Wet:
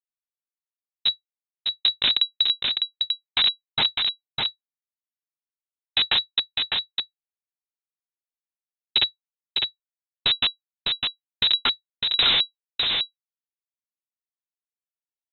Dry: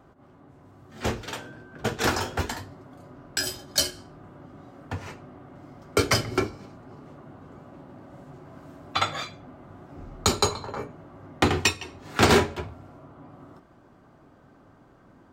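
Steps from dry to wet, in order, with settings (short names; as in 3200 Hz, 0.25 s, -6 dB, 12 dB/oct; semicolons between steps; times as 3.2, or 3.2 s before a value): high shelf 3000 Hz +10.5 dB; Schmitt trigger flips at -13.5 dBFS; on a send: echo 0.604 s -4 dB; on the sum: inverted band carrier 3900 Hz; mismatched tape noise reduction decoder only; gain +8 dB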